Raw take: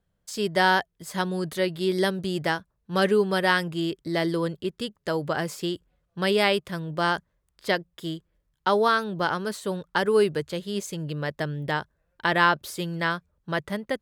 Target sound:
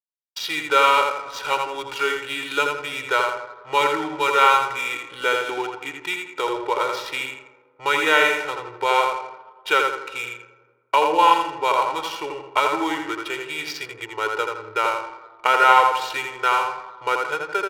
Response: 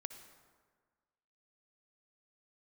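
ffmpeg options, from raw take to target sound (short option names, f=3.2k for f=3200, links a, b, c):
-filter_complex "[0:a]agate=range=-45dB:threshold=-49dB:ratio=16:detection=peak,aecho=1:1:1.6:0.98,asplit=2[a][b];[b]acompressor=threshold=-30dB:ratio=6,volume=-1dB[c];[a][c]amix=inputs=2:normalize=0,asetrate=34927,aresample=44100,highpass=790,lowpass=4.5k,asetrate=41625,aresample=44100,atempo=1.05946,asplit=2[d][e];[e]adelay=83,lowpass=f=2.7k:p=1,volume=-3dB,asplit=2[f][g];[g]adelay=83,lowpass=f=2.7k:p=1,volume=0.44,asplit=2[h][i];[i]adelay=83,lowpass=f=2.7k:p=1,volume=0.44,asplit=2[j][k];[k]adelay=83,lowpass=f=2.7k:p=1,volume=0.44,asplit=2[l][m];[m]adelay=83,lowpass=f=2.7k:p=1,volume=0.44,asplit=2[n][o];[o]adelay=83,lowpass=f=2.7k:p=1,volume=0.44[p];[d][f][h][j][l][n][p]amix=inputs=7:normalize=0,asplit=2[q][r];[1:a]atrim=start_sample=2205[s];[r][s]afir=irnorm=-1:irlink=0,volume=5.5dB[t];[q][t]amix=inputs=2:normalize=0,adynamicsmooth=sensitivity=5.5:basefreq=1.5k,volume=-3.5dB"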